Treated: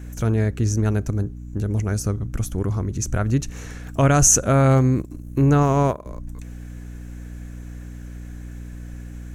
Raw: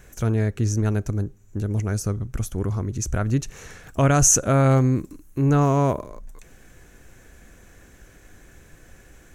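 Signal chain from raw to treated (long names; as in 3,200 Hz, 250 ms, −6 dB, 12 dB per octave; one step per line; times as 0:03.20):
mains hum 60 Hz, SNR 13 dB
0:04.99–0:06.06: transient designer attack +4 dB, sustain −11 dB
level +1.5 dB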